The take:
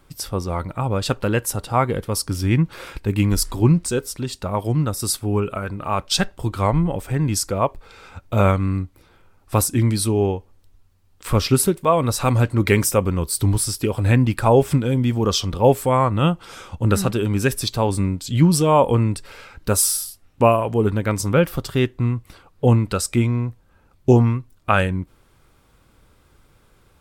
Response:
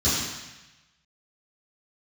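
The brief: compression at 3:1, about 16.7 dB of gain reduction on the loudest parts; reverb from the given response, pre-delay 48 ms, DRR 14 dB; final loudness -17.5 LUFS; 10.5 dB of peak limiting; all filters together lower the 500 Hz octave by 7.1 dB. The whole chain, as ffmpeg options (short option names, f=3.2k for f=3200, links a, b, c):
-filter_complex "[0:a]equalizer=f=500:t=o:g=-9,acompressor=threshold=-35dB:ratio=3,alimiter=level_in=4dB:limit=-24dB:level=0:latency=1,volume=-4dB,asplit=2[a][b];[1:a]atrim=start_sample=2205,adelay=48[c];[b][c]afir=irnorm=-1:irlink=0,volume=-28.5dB[d];[a][d]amix=inputs=2:normalize=0,volume=20dB"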